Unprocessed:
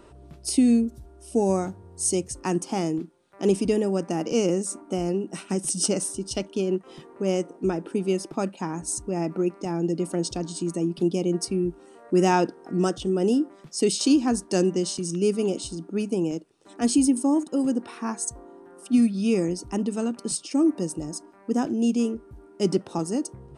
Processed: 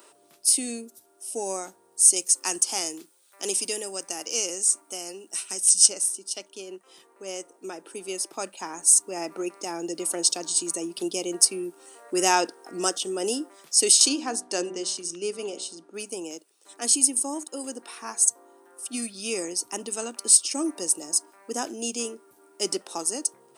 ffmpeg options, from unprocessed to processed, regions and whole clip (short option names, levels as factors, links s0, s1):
-filter_complex "[0:a]asettb=1/sr,asplit=3[s0][s1][s2];[s0]atrim=end=2.164[s3];[s1]atrim=start=2.16:end=5.9,asetpts=PTS-STARTPTS,afade=t=in:d=0.004:c=qsin,afade=t=out:st=3.736:d=0.004:c=qsin,acrossover=split=8900[s4][s5];[s5]acompressor=threshold=0.00447:ratio=4:attack=1:release=60[s6];[s4][s6]amix=inputs=2:normalize=0,highshelf=f=2500:g=9.5[s7];[s2]atrim=start=5.896[s8];[s3][s7]acrossfade=d=0.004:c1=hsin:c2=qsin[s9];[s9][s8]acrossfade=d=0.004:c1=qsin:c2=hsin,asettb=1/sr,asplit=3[s10][s11][s12];[s10]atrim=end=14.094[s13];[s11]atrim=start=14.09:end=15.94,asetpts=PTS-STARTPTS,afade=t=in:d=0.004:c=qsin,afade=t=out:st=1.846:d=0.004:c=qsin,aemphasis=mode=reproduction:type=50fm,bandreject=f=62.08:t=h:w=4,bandreject=f=124.16:t=h:w=4,bandreject=f=186.24:t=h:w=4,bandreject=f=248.32:t=h:w=4,bandreject=f=310.4:t=h:w=4,bandreject=f=372.48:t=h:w=4,bandreject=f=434.56:t=h:w=4,bandreject=f=496.64:t=h:w=4,bandreject=f=558.72:t=h:w=4,bandreject=f=620.8:t=h:w=4,bandreject=f=682.88:t=h:w=4,bandreject=f=744.96:t=h:w=4,bandreject=f=807.04:t=h:w=4,bandreject=f=869.12:t=h:w=4[s14];[s12]atrim=start=15.936[s15];[s13][s14]acrossfade=d=0.004:c1=hsin:c2=qsin[s16];[s16][s15]acrossfade=d=0.004:c1=qsin:c2=hsin,highpass=330,aemphasis=mode=production:type=riaa,dynaudnorm=f=380:g=13:m=3.76,volume=0.891"